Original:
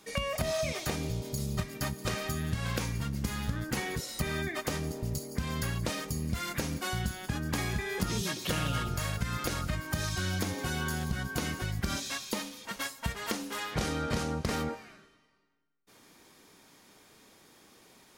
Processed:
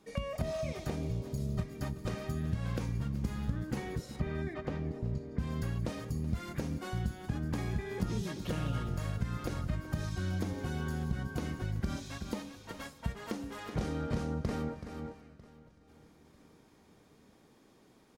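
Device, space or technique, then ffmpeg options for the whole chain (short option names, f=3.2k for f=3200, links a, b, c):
ducked delay: -filter_complex "[0:a]tiltshelf=f=890:g=6,asettb=1/sr,asplit=3[a][b][c];[a]atrim=end=4.164[d];[b]atrim=start=4.16:end=5.39,asetpts=PTS-STARTPTS,afade=t=in:d=0.004:c=qsin,afade=t=out:st=1.226:d=0.004:c=qsin,lowpass=3.1k[e];[c]atrim=start=5.386[f];[d][e]acrossfade=d=0.004:c1=hsin:c2=qsin[g];[g][f]acrossfade=d=0.004:c1=qsin:c2=hsin,highshelf=f=11k:g=-5.5,asplit=3[h][i][j];[i]adelay=378,volume=-4.5dB[k];[j]apad=whole_len=818096[l];[k][l]sidechaincompress=threshold=-36dB:ratio=8:attack=12:release=414[m];[h][m]amix=inputs=2:normalize=0,aecho=1:1:947|1894|2841:0.0841|0.0345|0.0141,volume=-6.5dB"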